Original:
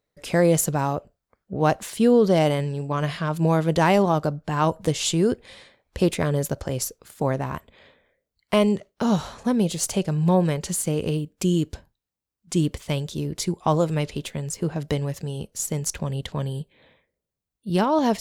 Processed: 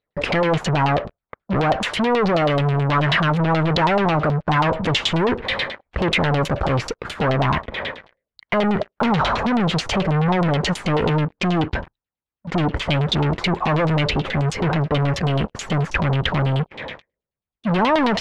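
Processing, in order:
0:11.21–0:12.77: low-pass filter 5,900 Hz
in parallel at −3 dB: downward compressor 6 to 1, threshold −36 dBFS, peak gain reduction 21 dB
on the sum: brickwall limiter −18 dBFS, peak gain reduction 11 dB
leveller curve on the samples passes 5
auto-filter low-pass saw down 9.3 Hz 740–4,000 Hz
level +1 dB

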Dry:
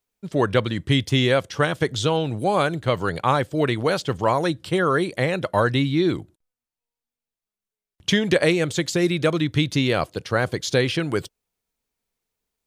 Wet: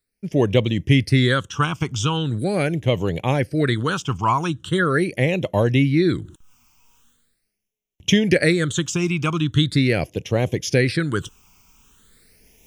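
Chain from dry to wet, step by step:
reversed playback
upward compression, threshold −35 dBFS
reversed playback
all-pass phaser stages 8, 0.41 Hz, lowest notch 530–1,400 Hz
level +4 dB

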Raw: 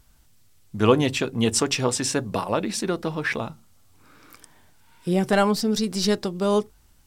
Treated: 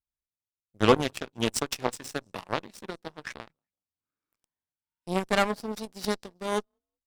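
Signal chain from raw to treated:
echo with shifted repeats 188 ms, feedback 34%, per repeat +35 Hz, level −23 dB
harmonic generator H 4 −29 dB, 7 −17 dB, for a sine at −4 dBFS
level −2 dB

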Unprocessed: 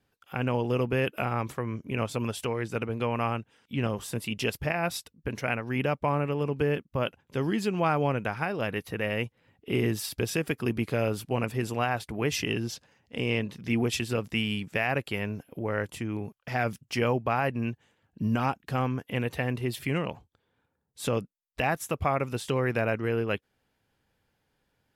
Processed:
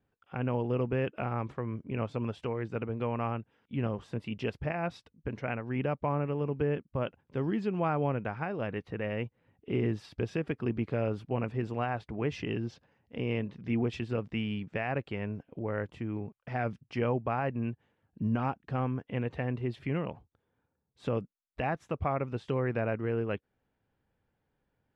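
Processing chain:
head-to-tape spacing loss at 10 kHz 31 dB
level −2 dB

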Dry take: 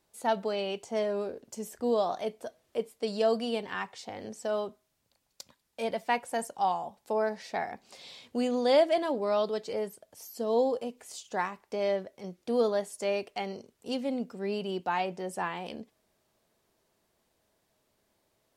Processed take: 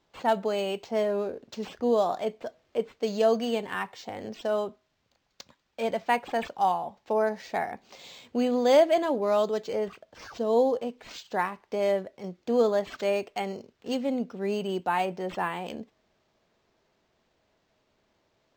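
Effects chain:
linearly interpolated sample-rate reduction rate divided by 4×
level +3.5 dB

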